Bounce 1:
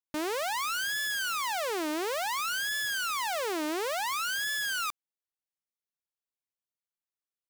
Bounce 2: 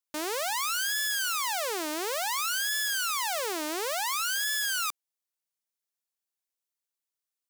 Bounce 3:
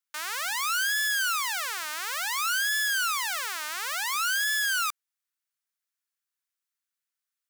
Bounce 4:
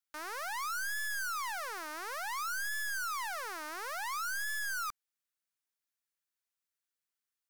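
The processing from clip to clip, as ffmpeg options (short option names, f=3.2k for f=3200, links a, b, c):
-af "bass=f=250:g=-12,treble=f=4k:g=6"
-af "highpass=f=1.4k:t=q:w=1.8"
-af "aeval=exprs='0.0398*(abs(mod(val(0)/0.0398+3,4)-2)-1)':c=same,volume=-3.5dB"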